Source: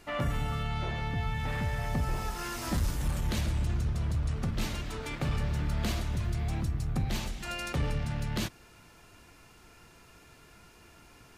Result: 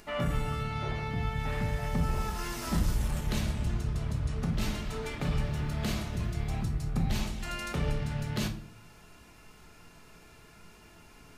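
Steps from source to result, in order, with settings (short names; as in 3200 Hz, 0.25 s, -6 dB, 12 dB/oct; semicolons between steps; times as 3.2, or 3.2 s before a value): upward compressor, threshold -52 dBFS; shoebox room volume 530 m³, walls furnished, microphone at 1.4 m; gain -1.5 dB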